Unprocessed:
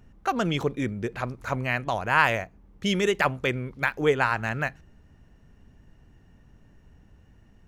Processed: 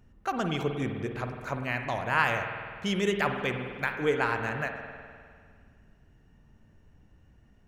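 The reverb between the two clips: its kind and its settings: spring tank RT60 2 s, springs 50 ms, chirp 45 ms, DRR 5 dB; gain -5 dB

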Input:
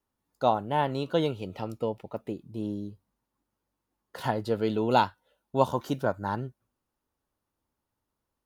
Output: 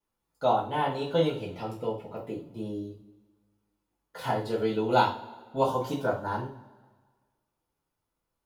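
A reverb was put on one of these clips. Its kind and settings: two-slope reverb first 0.34 s, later 1.6 s, from -21 dB, DRR -8 dB; gain -8 dB

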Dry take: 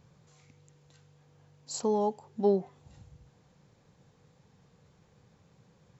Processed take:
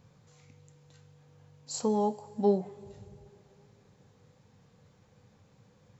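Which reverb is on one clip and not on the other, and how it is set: two-slope reverb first 0.24 s, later 3 s, from -21 dB, DRR 8.5 dB

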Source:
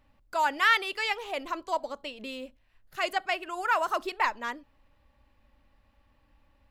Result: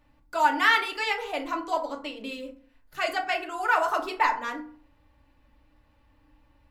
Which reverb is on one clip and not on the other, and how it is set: FDN reverb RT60 0.46 s, low-frequency decay 1.25×, high-frequency decay 0.5×, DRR 1 dB

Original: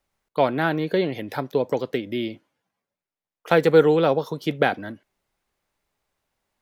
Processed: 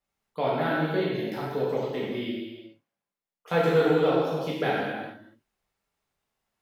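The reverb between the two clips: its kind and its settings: non-linear reverb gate 0.47 s falling, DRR -7.5 dB; gain -12 dB

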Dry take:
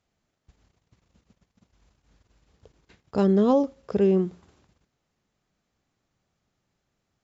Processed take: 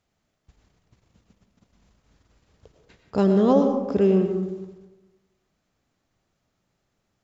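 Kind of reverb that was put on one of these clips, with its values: digital reverb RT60 1.1 s, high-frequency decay 0.4×, pre-delay 65 ms, DRR 5 dB; gain +1.5 dB

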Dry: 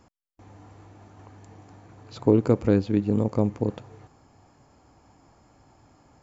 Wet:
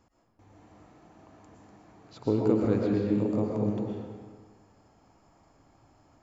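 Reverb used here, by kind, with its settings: digital reverb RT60 1.5 s, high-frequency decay 0.7×, pre-delay 80 ms, DRR -2.5 dB; gain -8 dB

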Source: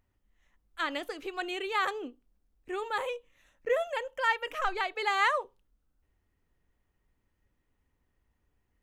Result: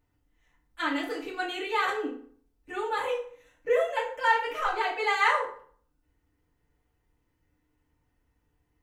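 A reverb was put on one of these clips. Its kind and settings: FDN reverb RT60 0.52 s, low-frequency decay 1×, high-frequency decay 0.7×, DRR -6 dB; gain -4 dB

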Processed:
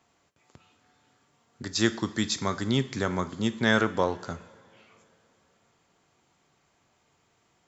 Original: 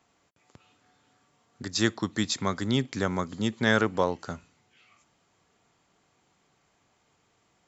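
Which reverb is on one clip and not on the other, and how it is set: two-slope reverb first 0.53 s, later 3.1 s, from -18 dB, DRR 11 dB

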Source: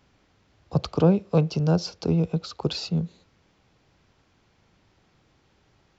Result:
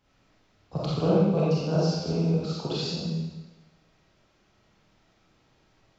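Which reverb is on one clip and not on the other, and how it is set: digital reverb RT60 1.1 s, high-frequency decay 1×, pre-delay 5 ms, DRR -8 dB; gain -9 dB

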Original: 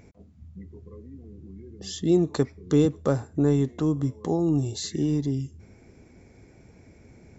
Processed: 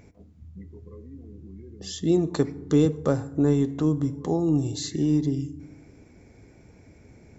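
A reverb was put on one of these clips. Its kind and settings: FDN reverb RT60 0.98 s, low-frequency decay 1.4×, high-frequency decay 0.5×, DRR 15 dB

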